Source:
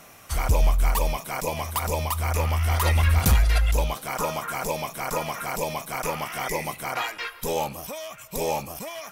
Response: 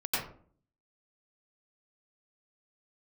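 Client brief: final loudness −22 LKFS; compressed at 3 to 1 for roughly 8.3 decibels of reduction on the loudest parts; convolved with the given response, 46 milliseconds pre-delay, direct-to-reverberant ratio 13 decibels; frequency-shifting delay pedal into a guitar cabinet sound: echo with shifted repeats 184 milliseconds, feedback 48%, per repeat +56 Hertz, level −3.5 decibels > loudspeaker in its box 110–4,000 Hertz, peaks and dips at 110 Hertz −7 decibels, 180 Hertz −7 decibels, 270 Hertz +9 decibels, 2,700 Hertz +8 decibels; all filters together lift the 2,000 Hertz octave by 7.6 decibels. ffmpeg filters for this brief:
-filter_complex "[0:a]equalizer=frequency=2000:width_type=o:gain=6,acompressor=threshold=-26dB:ratio=3,asplit=2[link_01][link_02];[1:a]atrim=start_sample=2205,adelay=46[link_03];[link_02][link_03]afir=irnorm=-1:irlink=0,volume=-21dB[link_04];[link_01][link_04]amix=inputs=2:normalize=0,asplit=7[link_05][link_06][link_07][link_08][link_09][link_10][link_11];[link_06]adelay=184,afreqshift=56,volume=-3.5dB[link_12];[link_07]adelay=368,afreqshift=112,volume=-9.9dB[link_13];[link_08]adelay=552,afreqshift=168,volume=-16.3dB[link_14];[link_09]adelay=736,afreqshift=224,volume=-22.6dB[link_15];[link_10]adelay=920,afreqshift=280,volume=-29dB[link_16];[link_11]adelay=1104,afreqshift=336,volume=-35.4dB[link_17];[link_05][link_12][link_13][link_14][link_15][link_16][link_17]amix=inputs=7:normalize=0,highpass=110,equalizer=frequency=110:width_type=q:width=4:gain=-7,equalizer=frequency=180:width_type=q:width=4:gain=-7,equalizer=frequency=270:width_type=q:width=4:gain=9,equalizer=frequency=2700:width_type=q:width=4:gain=8,lowpass=frequency=4000:width=0.5412,lowpass=frequency=4000:width=1.3066,volume=5dB"

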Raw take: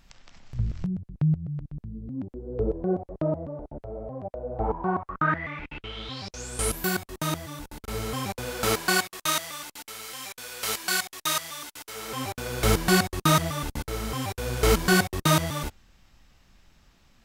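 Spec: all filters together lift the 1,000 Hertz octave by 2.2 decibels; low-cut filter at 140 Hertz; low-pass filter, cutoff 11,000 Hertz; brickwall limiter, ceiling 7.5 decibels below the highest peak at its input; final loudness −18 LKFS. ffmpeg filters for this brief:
ffmpeg -i in.wav -af "highpass=140,lowpass=11000,equalizer=frequency=1000:width_type=o:gain=3,volume=12dB,alimiter=limit=-2.5dB:level=0:latency=1" out.wav

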